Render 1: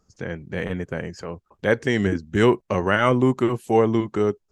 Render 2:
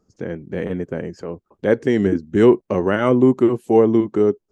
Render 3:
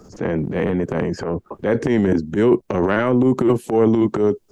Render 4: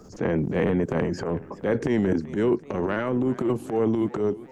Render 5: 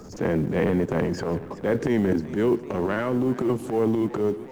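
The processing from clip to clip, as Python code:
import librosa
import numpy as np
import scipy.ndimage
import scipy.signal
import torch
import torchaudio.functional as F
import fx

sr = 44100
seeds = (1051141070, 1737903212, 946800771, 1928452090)

y1 = fx.peak_eq(x, sr, hz=320.0, db=12.0, octaves=2.3)
y1 = F.gain(torch.from_numpy(y1), -5.5).numpy()
y2 = fx.transient(y1, sr, attack_db=-11, sustain_db=10)
y2 = fx.band_squash(y2, sr, depth_pct=70)
y3 = fx.rider(y2, sr, range_db=10, speed_s=2.0)
y3 = fx.echo_warbled(y3, sr, ms=379, feedback_pct=61, rate_hz=2.8, cents=147, wet_db=-18.5)
y3 = F.gain(torch.from_numpy(y3), -7.0).numpy()
y4 = fx.law_mismatch(y3, sr, coded='mu')
y4 = y4 + 10.0 ** (-19.5 / 20.0) * np.pad(y4, (int(149 * sr / 1000.0), 0))[:len(y4)]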